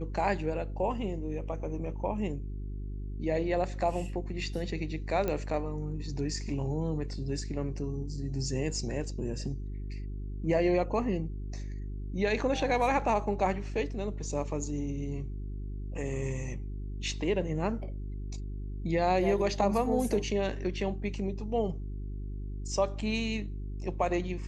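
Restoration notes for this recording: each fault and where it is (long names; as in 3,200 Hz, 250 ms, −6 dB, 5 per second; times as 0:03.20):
mains hum 50 Hz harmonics 8 −37 dBFS
0:05.28: click −18 dBFS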